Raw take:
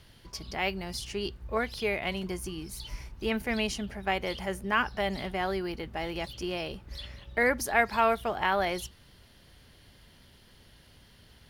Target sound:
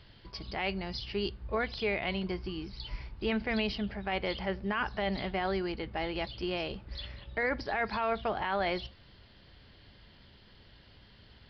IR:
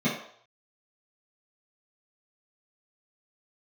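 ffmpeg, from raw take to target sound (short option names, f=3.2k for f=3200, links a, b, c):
-filter_complex "[0:a]alimiter=limit=-21dB:level=0:latency=1:release=18,asplit=2[a][b];[1:a]atrim=start_sample=2205[c];[b][c]afir=irnorm=-1:irlink=0,volume=-34.5dB[d];[a][d]amix=inputs=2:normalize=0,aresample=11025,aresample=44100"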